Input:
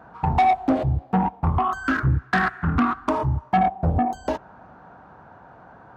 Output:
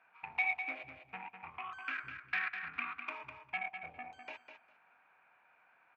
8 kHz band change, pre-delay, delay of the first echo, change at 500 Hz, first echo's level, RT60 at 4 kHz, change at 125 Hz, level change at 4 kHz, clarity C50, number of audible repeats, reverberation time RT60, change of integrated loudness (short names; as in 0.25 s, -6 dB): n/a, none, 0.202 s, -27.0 dB, -8.0 dB, none, under -40 dB, -11.5 dB, none, 2, none, -17.0 dB